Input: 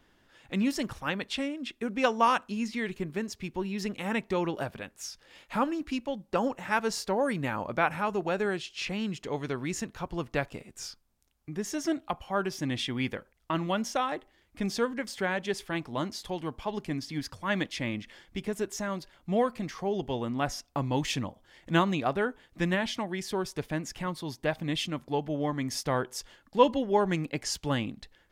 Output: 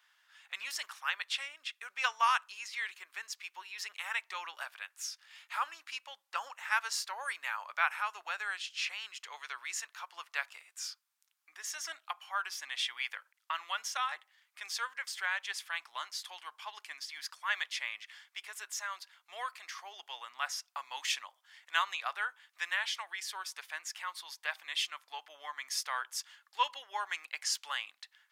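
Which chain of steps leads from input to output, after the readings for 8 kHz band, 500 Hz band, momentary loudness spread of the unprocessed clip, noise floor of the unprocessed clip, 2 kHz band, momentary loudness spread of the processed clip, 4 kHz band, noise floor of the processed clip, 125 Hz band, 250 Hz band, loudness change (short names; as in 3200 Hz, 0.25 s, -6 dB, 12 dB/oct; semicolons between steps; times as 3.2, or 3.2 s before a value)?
0.0 dB, -24.5 dB, 9 LU, -66 dBFS, 0.0 dB, 12 LU, 0.0 dB, -77 dBFS, under -40 dB, under -40 dB, -6.0 dB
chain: HPF 1100 Hz 24 dB/oct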